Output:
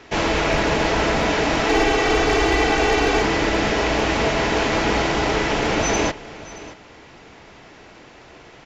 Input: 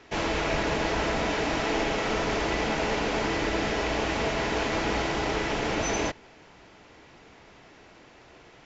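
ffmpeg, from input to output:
ffmpeg -i in.wav -filter_complex "[0:a]asettb=1/sr,asplit=3[link_01][link_02][link_03];[link_01]atrim=end=1.694[link_04];[link_02]atrim=start=1.69:end=3.23,asetpts=PTS-STARTPTS,afade=type=in:duration=0.004:curve=qsin,afade=type=out:start_time=1.536:duration=0.004:curve=qsin,aecho=1:1:2.6:0.69,atrim=end_sample=67914[link_05];[link_03]atrim=start=3.226[link_06];[link_04][link_05]acrossfade=duration=0.004:curve1=hsin:curve2=qsin[link_07];[link_07][link_06]acrossfade=duration=0.004:curve1=qsin:curve2=hsin,volume=18dB,asoftclip=hard,volume=-18dB,aecho=1:1:623:0.133,volume=7.5dB" out.wav

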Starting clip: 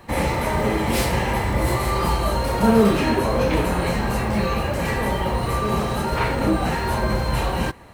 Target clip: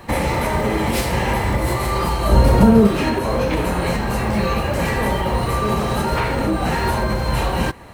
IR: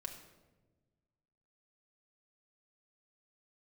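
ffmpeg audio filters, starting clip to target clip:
-filter_complex "[0:a]alimiter=limit=-15.5dB:level=0:latency=1:release=386,asettb=1/sr,asplit=3[link_01][link_02][link_03];[link_01]atrim=end=2.294[link_04];[link_02]atrim=start=2.29:end=2.87,asetpts=PTS-STARTPTS,afade=type=in:duration=0.004:curve=qsin,afade=type=out:start_time=0.576:duration=0.004:curve=qsin,lowshelf=frequency=440:gain=10.5[link_05];[link_03]atrim=start=2.866[link_06];[link_04][link_05]acrossfade=duration=0.004:curve1=hsin:curve2=qsin[link_07];[link_07][link_06]acrossfade=duration=0.004:curve1=qsin:curve2=hsin,volume=6dB"

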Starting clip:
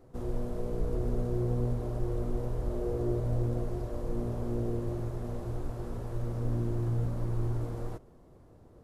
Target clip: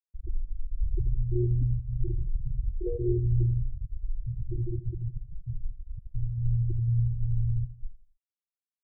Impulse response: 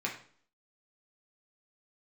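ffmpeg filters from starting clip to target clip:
-filter_complex "[0:a]afftfilt=real='re*gte(hypot(re,im),0.178)':imag='im*gte(hypot(re,im),0.178)':win_size=1024:overlap=0.75,asplit=2[link_01][link_02];[link_02]adelay=84,lowpass=frequency=2000:poles=1,volume=-15dB,asplit=2[link_03][link_04];[link_04]adelay=84,lowpass=frequency=2000:poles=1,volume=0.36,asplit=2[link_05][link_06];[link_06]adelay=84,lowpass=frequency=2000:poles=1,volume=0.36[link_07];[link_03][link_05][link_07]amix=inputs=3:normalize=0[link_08];[link_01][link_08]amix=inputs=2:normalize=0,volume=5dB"

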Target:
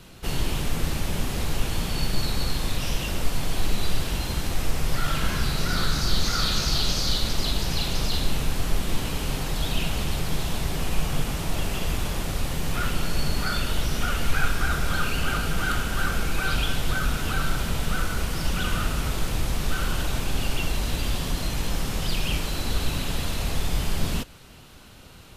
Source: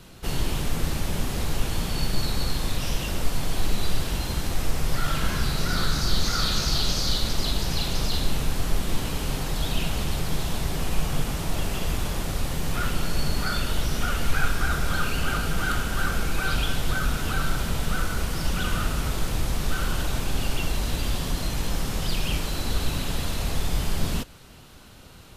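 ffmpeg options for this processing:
ffmpeg -i in.wav -af "equalizer=frequency=2600:width_type=o:width=0.77:gain=2" out.wav

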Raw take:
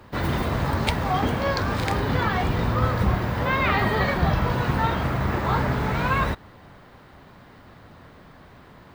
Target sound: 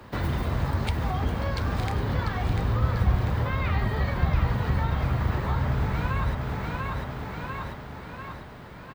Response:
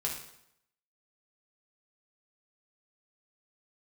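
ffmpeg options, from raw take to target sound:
-filter_complex "[0:a]aecho=1:1:694|1388|2082|2776|3470|4164:0.447|0.219|0.107|0.0526|0.0258|0.0126,acrossover=split=120[link_01][link_02];[link_02]acompressor=threshold=-32dB:ratio=5[link_03];[link_01][link_03]amix=inputs=2:normalize=0,volume=1.5dB"

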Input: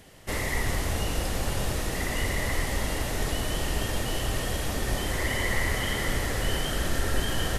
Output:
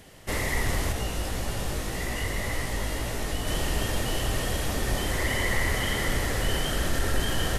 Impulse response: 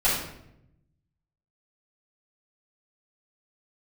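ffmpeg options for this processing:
-filter_complex "[0:a]asettb=1/sr,asplit=3[link_01][link_02][link_03];[link_01]atrim=end=0.924[link_04];[link_02]atrim=start=0.92:end=3.47,asetpts=PTS-STARTPTS,afade=type=in:duration=0.004:curve=qsin,afade=type=out:start_time=2.546:duration=0.004:curve=qsin,flanger=delay=17:depth=2.7:speed=1.8[link_05];[link_03]atrim=start=3.466[link_06];[link_04][link_05]acrossfade=duration=0.004:curve1=hsin:curve2=qsin[link_07];[link_07][link_06]acrossfade=duration=0.004:curve1=qsin:curve2=hsin,asoftclip=type=tanh:threshold=-14dB,volume=1.5dB"

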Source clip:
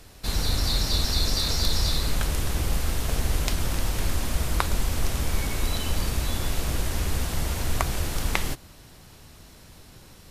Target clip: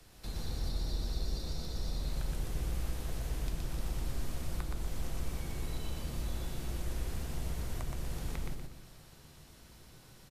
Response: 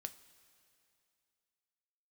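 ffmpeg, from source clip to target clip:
-filter_complex "[0:a]acrossover=split=150|330|710[link_01][link_02][link_03][link_04];[link_01]acompressor=threshold=-25dB:ratio=4[link_05];[link_02]acompressor=threshold=-42dB:ratio=4[link_06];[link_03]acompressor=threshold=-45dB:ratio=4[link_07];[link_04]acompressor=threshold=-42dB:ratio=4[link_08];[link_05][link_06][link_07][link_08]amix=inputs=4:normalize=0,aecho=1:1:121|242|363|484|605:0.708|0.255|0.0917|0.033|0.0119[link_09];[1:a]atrim=start_sample=2205[link_10];[link_09][link_10]afir=irnorm=-1:irlink=0,volume=-5.5dB"

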